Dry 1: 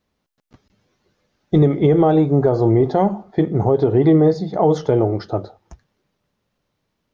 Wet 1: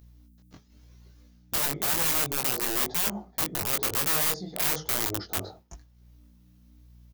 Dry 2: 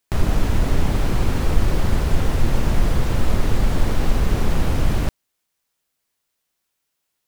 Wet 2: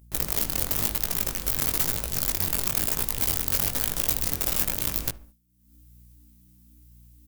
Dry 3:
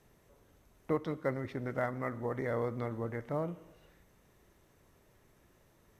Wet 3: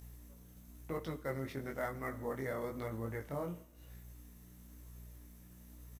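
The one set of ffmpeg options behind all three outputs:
-filter_complex "[0:a]adynamicequalizer=threshold=0.0158:dfrequency=120:dqfactor=4.5:tfrequency=120:tqfactor=4.5:attack=5:release=100:ratio=0.375:range=3.5:mode=cutabove:tftype=bell,asplit=2[a][b];[b]adelay=70,lowpass=f=3.1k:p=1,volume=-23.5dB,asplit=2[c][d];[d]adelay=70,lowpass=f=3.1k:p=1,volume=0.47,asplit=2[e][f];[f]adelay=70,lowpass=f=3.1k:p=1,volume=0.47[g];[c][e][g]amix=inputs=3:normalize=0[h];[a][h]amix=inputs=2:normalize=0,aeval=exprs='(mod(3.76*val(0)+1,2)-1)/3.76':c=same,areverse,acompressor=threshold=-30dB:ratio=5,areverse,aeval=exprs='val(0)+0.00316*(sin(2*PI*60*n/s)+sin(2*PI*2*60*n/s)/2+sin(2*PI*3*60*n/s)/3+sin(2*PI*4*60*n/s)/4+sin(2*PI*5*60*n/s)/5)':c=same,aemphasis=mode=production:type=75fm,flanger=delay=18:depth=4.5:speed=1,agate=range=-33dB:threshold=-45dB:ratio=3:detection=peak,acompressor=mode=upward:threshold=-41dB:ratio=2.5"

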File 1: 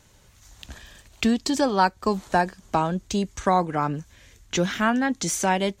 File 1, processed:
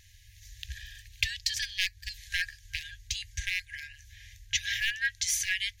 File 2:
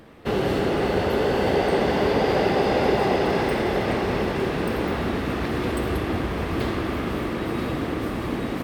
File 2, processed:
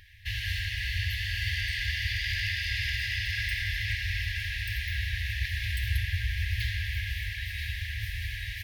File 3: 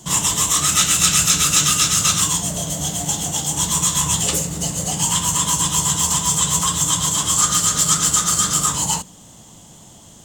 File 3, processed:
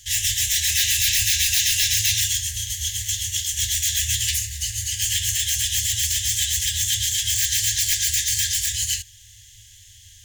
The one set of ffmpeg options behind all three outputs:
-af "aeval=exprs='0.237*(abs(mod(val(0)/0.237+3,4)-2)-1)':c=same,equalizer=f=160:t=o:w=0.33:g=3,equalizer=f=400:t=o:w=0.33:g=6,equalizer=f=8k:t=o:w=0.33:g=-10,afftfilt=real='re*(1-between(b*sr/4096,110,1600))':imag='im*(1-between(b*sr/4096,110,1600))':win_size=4096:overlap=0.75,volume=1.5dB"

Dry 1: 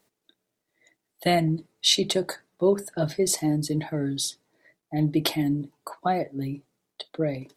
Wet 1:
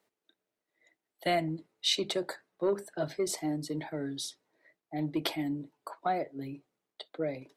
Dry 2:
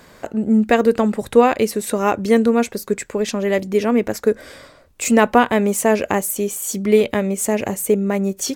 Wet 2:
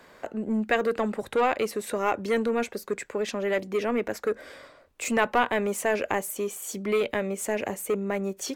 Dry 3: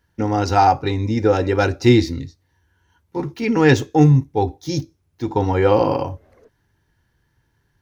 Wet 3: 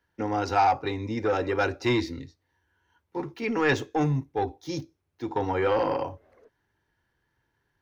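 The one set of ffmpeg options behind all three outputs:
-filter_complex "[0:a]bass=f=250:g=-9,treble=f=4k:g=-7,acrossover=split=120|970[a][b][c];[b]asoftclip=type=tanh:threshold=-16.5dB[d];[a][d][c]amix=inputs=3:normalize=0,volume=-4.5dB"

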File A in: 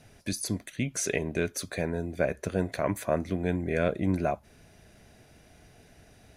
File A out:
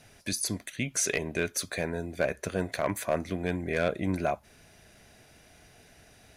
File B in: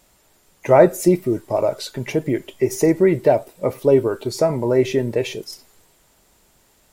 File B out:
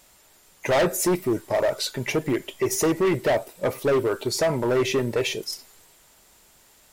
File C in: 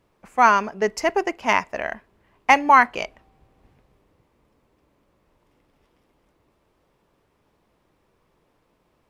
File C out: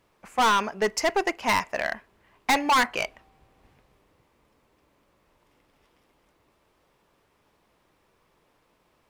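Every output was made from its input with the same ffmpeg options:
-af "tiltshelf=f=670:g=-3.5,volume=17.5dB,asoftclip=hard,volume=-17.5dB"

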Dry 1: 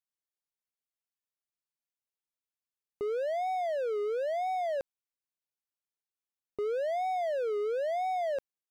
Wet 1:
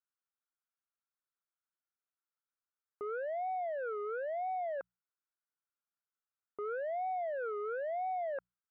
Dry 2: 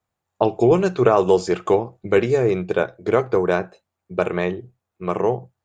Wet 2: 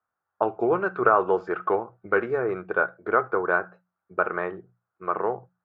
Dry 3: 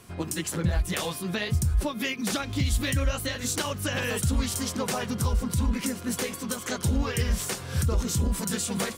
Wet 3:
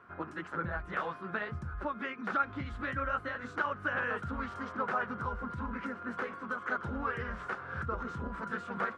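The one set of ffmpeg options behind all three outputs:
-af "lowpass=f=1.4k:t=q:w=5,lowshelf=f=190:g=-11,bandreject=f=60:t=h:w=6,bandreject=f=120:t=h:w=6,bandreject=f=180:t=h:w=6,volume=-6.5dB"

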